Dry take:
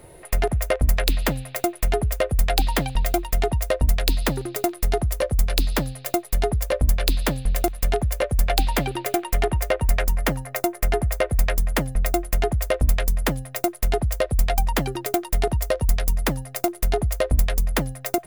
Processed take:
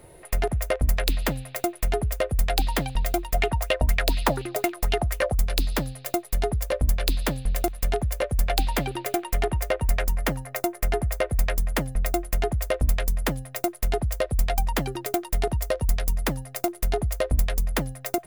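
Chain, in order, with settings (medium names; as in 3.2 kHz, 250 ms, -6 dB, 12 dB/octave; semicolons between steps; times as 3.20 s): 3.34–5.35 s: sweeping bell 4.1 Hz 630–3000 Hz +14 dB; trim -3 dB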